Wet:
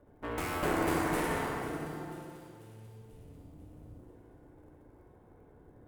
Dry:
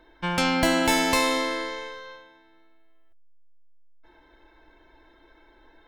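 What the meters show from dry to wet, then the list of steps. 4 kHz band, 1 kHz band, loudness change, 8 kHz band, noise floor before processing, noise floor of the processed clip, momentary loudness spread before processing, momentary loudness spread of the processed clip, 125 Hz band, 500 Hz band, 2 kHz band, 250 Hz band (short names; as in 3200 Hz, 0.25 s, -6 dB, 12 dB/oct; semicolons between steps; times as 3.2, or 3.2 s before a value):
-18.5 dB, -8.5 dB, -10.5 dB, -13.0 dB, -58 dBFS, -59 dBFS, 16 LU, 23 LU, -3.0 dB, -7.0 dB, -11.0 dB, -8.5 dB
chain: cycle switcher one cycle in 3, inverted; EQ curve 510 Hz 0 dB, 4100 Hz -26 dB, 9600 Hz -9 dB; in parallel at 0 dB: limiter -24.5 dBFS, peak gain reduction 11 dB; on the sum: added harmonics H 3 -17 dB, 7 -13 dB, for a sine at -11 dBFS; resonator 360 Hz, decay 0.6 s, mix 70%; on a send: split-band echo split 2600 Hz, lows 0.187 s, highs 0.492 s, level -13 dB; on the sum: FDN reverb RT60 2.3 s, low-frequency decay 0.95×, high-frequency decay 0.55×, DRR -0.5 dB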